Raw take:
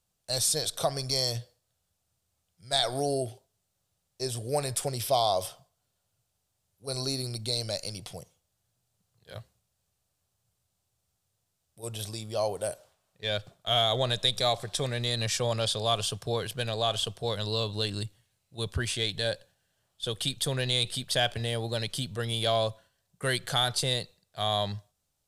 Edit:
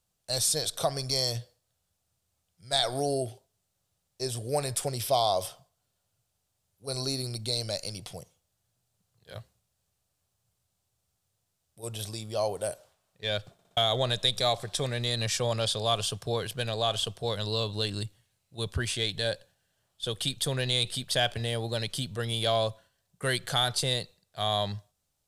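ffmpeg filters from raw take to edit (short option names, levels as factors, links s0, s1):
-filter_complex "[0:a]asplit=5[s0][s1][s2][s3][s4];[s0]atrim=end=13.592[s5];[s1]atrim=start=13.528:end=13.592[s6];[s2]atrim=start=13.528:end=13.592[s7];[s3]atrim=start=13.528:end=13.592[s8];[s4]atrim=start=13.768[s9];[s5][s6]acrossfade=d=0.004:c1=hsin:c2=hsin[s10];[s10][s7]acrossfade=d=0.004:c1=hsin:c2=hsin[s11];[s11][s8]acrossfade=d=0.004:c1=hsin:c2=hsin[s12];[s12][s9]acrossfade=d=0.004:c1=hsin:c2=hsin"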